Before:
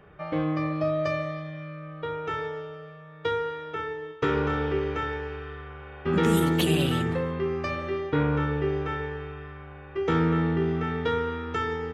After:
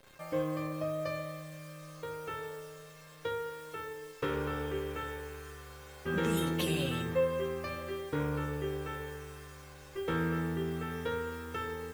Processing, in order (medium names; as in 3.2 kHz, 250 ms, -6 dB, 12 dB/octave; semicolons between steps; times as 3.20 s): bit crusher 8-bit; feedback comb 530 Hz, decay 0.28 s, harmonics all, mix 90%; trim +9 dB